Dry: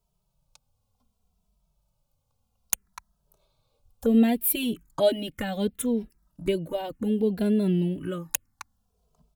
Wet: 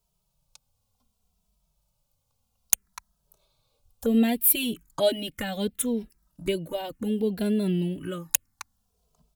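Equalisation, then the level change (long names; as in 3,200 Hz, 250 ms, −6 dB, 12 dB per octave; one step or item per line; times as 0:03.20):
high-shelf EQ 2,000 Hz +7 dB
−2.0 dB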